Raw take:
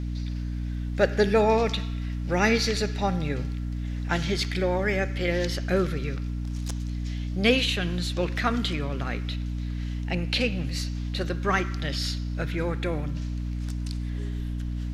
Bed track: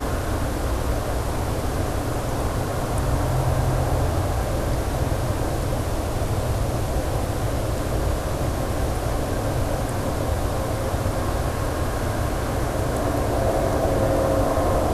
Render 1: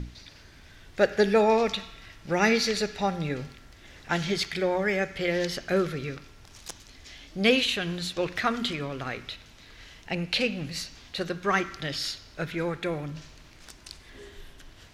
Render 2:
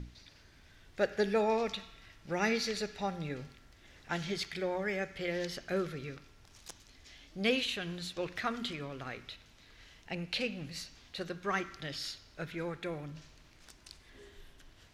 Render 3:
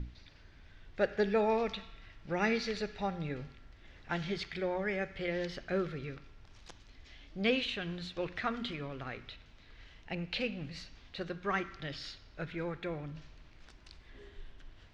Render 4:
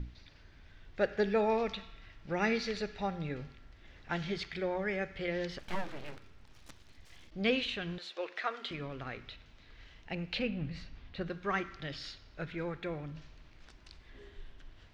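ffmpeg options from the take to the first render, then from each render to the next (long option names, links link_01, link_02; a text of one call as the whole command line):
ffmpeg -i in.wav -af "bandreject=frequency=60:width_type=h:width=6,bandreject=frequency=120:width_type=h:width=6,bandreject=frequency=180:width_type=h:width=6,bandreject=frequency=240:width_type=h:width=6,bandreject=frequency=300:width_type=h:width=6" out.wav
ffmpeg -i in.wav -af "volume=-8.5dB" out.wav
ffmpeg -i in.wav -af "lowpass=3900,lowshelf=frequency=62:gain=9" out.wav
ffmpeg -i in.wav -filter_complex "[0:a]asplit=3[link_01][link_02][link_03];[link_01]afade=type=out:start_time=5.58:duration=0.02[link_04];[link_02]aeval=exprs='abs(val(0))':channel_layout=same,afade=type=in:start_time=5.58:duration=0.02,afade=type=out:start_time=7.3:duration=0.02[link_05];[link_03]afade=type=in:start_time=7.3:duration=0.02[link_06];[link_04][link_05][link_06]amix=inputs=3:normalize=0,asettb=1/sr,asplit=3[link_07][link_08][link_09];[link_07]atrim=end=7.984[link_10];[link_08]atrim=start=7.98:end=8.71,asetpts=PTS-STARTPTS,afade=type=in:duration=0.004:curve=qsin,afade=type=out:start_time=0.726:duration=0.004:curve=qsin,highpass=frequency=390:width=0.5412,highpass=frequency=390:width=1.3066[link_11];[link_09]atrim=start=8.706[link_12];[link_10][link_11]acrossfade=duration=0.004:curve1=hsin:curve2=qsin[link_13];[link_13][link_12]acrossfade=duration=0.004:curve1=qsin:curve2=hsin,asettb=1/sr,asplit=3[link_14][link_15][link_16];[link_14]atrim=end=10.394[link_17];[link_15]atrim=start=10.39:end=11.3,asetpts=PTS-STARTPTS,afade=type=in:duration=0.004:curve=qsin,afade=type=out:start_time=0.906:duration=0.004:curve=qsin,bass=frequency=250:gain=6,treble=frequency=4000:gain=-10[link_18];[link_16]atrim=start=11.296[link_19];[link_17][link_18]acrossfade=duration=0.004:curve1=hsin:curve2=qsin[link_20];[link_20][link_19]acrossfade=duration=0.004:curve1=qsin:curve2=hsin" out.wav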